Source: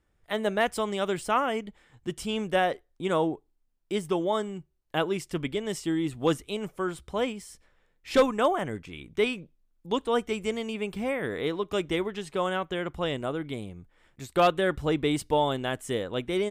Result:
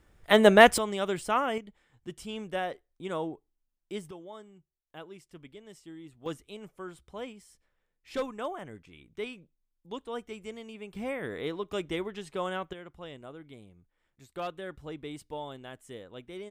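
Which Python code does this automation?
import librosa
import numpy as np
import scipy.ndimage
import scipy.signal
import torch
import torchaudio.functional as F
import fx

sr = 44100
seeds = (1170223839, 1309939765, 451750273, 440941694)

y = fx.gain(x, sr, db=fx.steps((0.0, 9.5), (0.78, -2.0), (1.58, -8.0), (4.11, -18.5), (6.26, -11.5), (10.95, -5.0), (12.73, -14.5)))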